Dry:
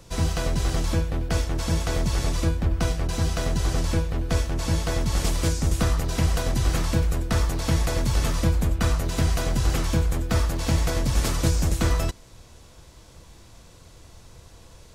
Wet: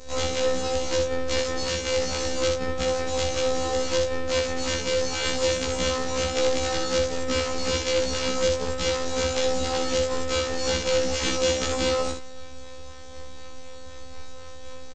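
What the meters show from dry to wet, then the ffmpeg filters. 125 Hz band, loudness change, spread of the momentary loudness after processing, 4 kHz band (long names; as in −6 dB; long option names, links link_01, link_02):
−12.5 dB, −0.5 dB, 20 LU, +6.0 dB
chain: -filter_complex "[0:a]aemphasis=mode=production:type=50fm,aecho=1:1:2.3:0.72,acrossover=split=130|3000[link_01][link_02][link_03];[link_01]acompressor=threshold=-25dB:ratio=6[link_04];[link_04][link_02][link_03]amix=inputs=3:normalize=0,acrossover=split=200[link_05][link_06];[link_05]alimiter=level_in=2.5dB:limit=-24dB:level=0:latency=1:release=23,volume=-2.5dB[link_07];[link_07][link_06]amix=inputs=2:normalize=0,acontrast=60,asplit=2[link_08][link_09];[link_09]acrusher=samples=23:mix=1:aa=0.000001:lfo=1:lforange=36.8:lforate=4,volume=-3dB[link_10];[link_08][link_10]amix=inputs=2:normalize=0,afftfilt=real='hypot(re,im)*cos(PI*b)':imag='0':win_size=2048:overlap=0.75,aeval=exprs='(mod(1.33*val(0)+1,2)-1)/1.33':channel_layout=same,aecho=1:1:25|62:0.376|0.531,aresample=16000,aresample=44100,afftfilt=real='re*1.73*eq(mod(b,3),0)':imag='im*1.73*eq(mod(b,3),0)':win_size=2048:overlap=0.75,volume=-2dB"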